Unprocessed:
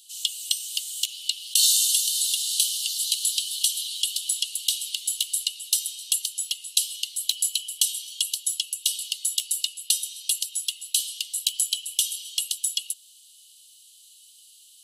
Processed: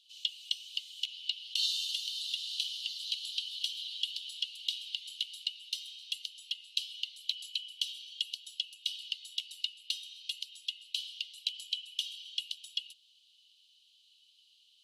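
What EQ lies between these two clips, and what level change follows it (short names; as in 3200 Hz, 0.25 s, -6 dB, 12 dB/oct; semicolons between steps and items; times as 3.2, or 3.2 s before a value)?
Butterworth band-stop 1800 Hz, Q 3.6; air absorption 290 m; 0.0 dB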